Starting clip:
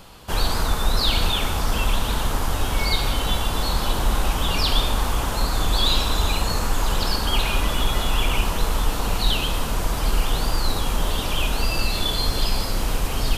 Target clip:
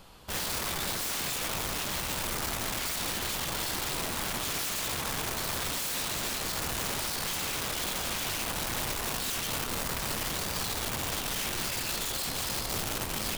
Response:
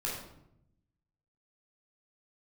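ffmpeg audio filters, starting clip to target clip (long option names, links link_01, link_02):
-af "aeval=exprs='(mod(10*val(0)+1,2)-1)/10':channel_layout=same,bandreject=frequency=50:width_type=h:width=6,bandreject=frequency=100:width_type=h:width=6,volume=-8dB"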